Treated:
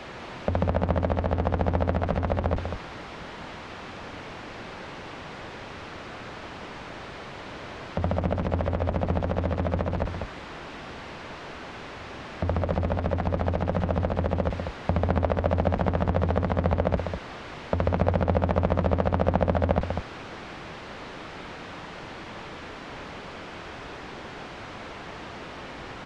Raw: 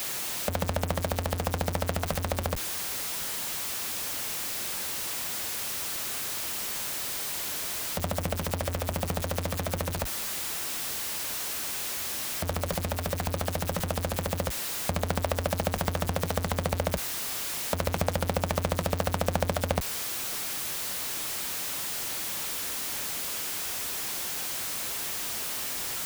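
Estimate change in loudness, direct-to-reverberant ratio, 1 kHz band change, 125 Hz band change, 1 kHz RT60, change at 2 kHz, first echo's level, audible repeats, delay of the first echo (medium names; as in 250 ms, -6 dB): +0.5 dB, no reverb, +3.5 dB, +5.5 dB, no reverb, -1.0 dB, -6.5 dB, 1, 196 ms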